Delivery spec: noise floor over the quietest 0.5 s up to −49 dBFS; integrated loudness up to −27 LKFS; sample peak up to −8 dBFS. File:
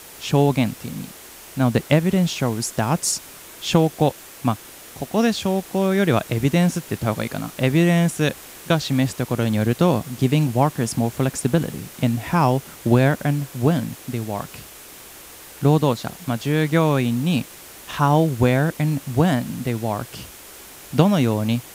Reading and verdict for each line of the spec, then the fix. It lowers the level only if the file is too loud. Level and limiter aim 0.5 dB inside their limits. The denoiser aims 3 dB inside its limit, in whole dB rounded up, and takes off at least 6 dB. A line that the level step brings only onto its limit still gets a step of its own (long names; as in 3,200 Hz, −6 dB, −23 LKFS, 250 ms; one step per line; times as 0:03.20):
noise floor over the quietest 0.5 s −42 dBFS: out of spec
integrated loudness −21.0 LKFS: out of spec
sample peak −2.5 dBFS: out of spec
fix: broadband denoise 6 dB, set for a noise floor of −42 dBFS
level −6.5 dB